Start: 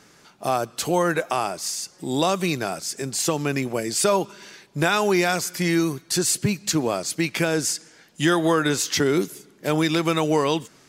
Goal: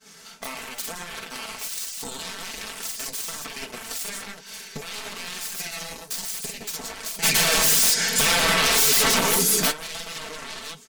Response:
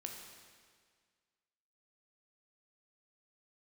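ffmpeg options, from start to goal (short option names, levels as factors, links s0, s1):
-filter_complex "[0:a]aecho=1:1:46|123|161|173:0.708|0.126|0.355|0.355,acontrast=42,equalizer=f=300:w=5.7:g=-7,alimiter=limit=0.133:level=0:latency=1:release=391,acompressor=threshold=0.02:ratio=5,aeval=exprs='0.075*(cos(1*acos(clip(val(0)/0.075,-1,1)))-cos(1*PI/2))+0.00211*(cos(3*acos(clip(val(0)/0.075,-1,1)))-cos(3*PI/2))+0.0119*(cos(4*acos(clip(val(0)/0.075,-1,1)))-cos(4*PI/2))+0.0075*(cos(6*acos(clip(val(0)/0.075,-1,1)))-cos(6*PI/2))+0.0237*(cos(7*acos(clip(val(0)/0.075,-1,1)))-cos(7*PI/2))':c=same,highshelf=f=2200:g=9,asplit=3[s0][s1][s2];[s0]afade=t=out:st=7.22:d=0.02[s3];[s1]aeval=exprs='0.224*sin(PI/2*5.62*val(0)/0.224)':c=same,afade=t=in:st=7.22:d=0.02,afade=t=out:st=9.7:d=0.02[s4];[s2]afade=t=in:st=9.7:d=0.02[s5];[s3][s4][s5]amix=inputs=3:normalize=0,flanger=delay=4.5:depth=7.3:regen=-45:speed=1.1:shape=sinusoidal,agate=range=0.0224:threshold=0.0126:ratio=3:detection=peak,aecho=1:1:4.5:0.69,volume=1.19"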